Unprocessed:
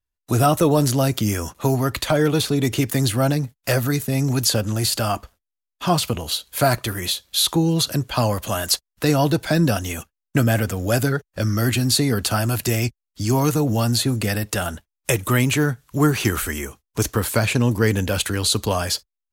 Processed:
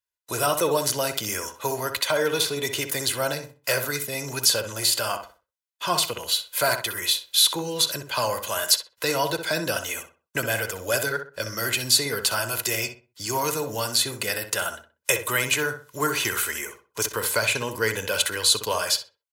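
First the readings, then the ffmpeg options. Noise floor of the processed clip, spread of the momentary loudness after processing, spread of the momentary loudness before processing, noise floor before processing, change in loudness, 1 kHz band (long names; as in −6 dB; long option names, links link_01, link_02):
−80 dBFS, 9 LU, 7 LU, −84 dBFS, −3.0 dB, −3.0 dB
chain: -filter_complex "[0:a]highpass=frequency=1000:poles=1,aecho=1:1:2:0.49,asplit=2[link_01][link_02];[link_02]adelay=63,lowpass=frequency=2200:poles=1,volume=-7.5dB,asplit=2[link_03][link_04];[link_04]adelay=63,lowpass=frequency=2200:poles=1,volume=0.3,asplit=2[link_05][link_06];[link_06]adelay=63,lowpass=frequency=2200:poles=1,volume=0.3,asplit=2[link_07][link_08];[link_08]adelay=63,lowpass=frequency=2200:poles=1,volume=0.3[link_09];[link_01][link_03][link_05][link_07][link_09]amix=inputs=5:normalize=0"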